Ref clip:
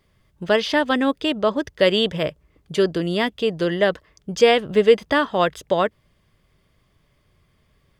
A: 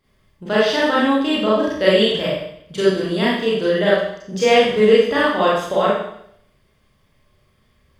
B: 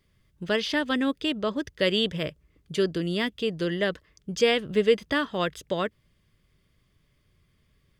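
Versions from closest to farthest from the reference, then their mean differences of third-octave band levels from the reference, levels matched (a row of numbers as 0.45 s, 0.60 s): B, A; 2.0 dB, 7.5 dB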